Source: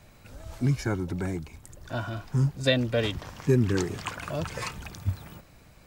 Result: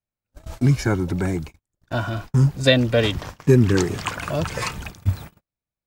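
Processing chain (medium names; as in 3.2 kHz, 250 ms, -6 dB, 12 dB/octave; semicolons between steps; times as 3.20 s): gate -40 dBFS, range -46 dB; trim +7.5 dB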